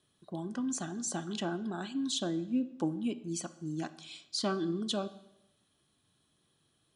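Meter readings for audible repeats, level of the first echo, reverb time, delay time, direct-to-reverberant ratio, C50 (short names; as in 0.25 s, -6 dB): none, none, 0.85 s, none, 12.0 dB, 15.5 dB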